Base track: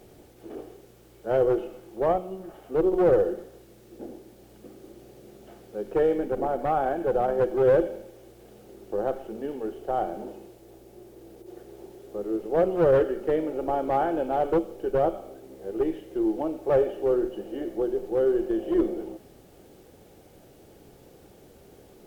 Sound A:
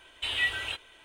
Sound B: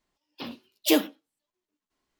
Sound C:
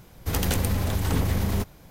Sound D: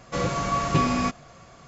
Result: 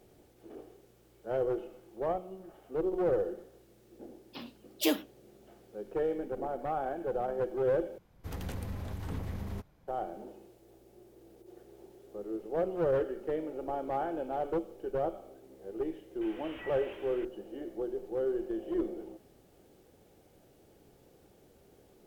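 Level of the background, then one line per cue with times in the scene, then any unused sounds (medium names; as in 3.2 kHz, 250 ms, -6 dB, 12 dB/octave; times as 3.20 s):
base track -9 dB
3.95 s: add B -7 dB
7.98 s: replace with C -13.5 dB + treble shelf 3.2 kHz -10 dB
16.21 s: add A -14 dB + one-bit delta coder 16 kbps, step -32.5 dBFS
not used: D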